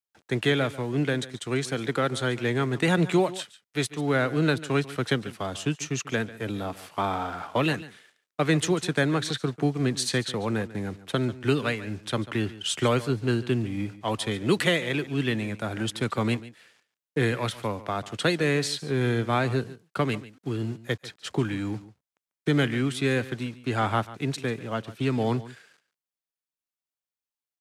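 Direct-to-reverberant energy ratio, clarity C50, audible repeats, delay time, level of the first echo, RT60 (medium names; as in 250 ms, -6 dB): no reverb, no reverb, 1, 143 ms, -17.0 dB, no reverb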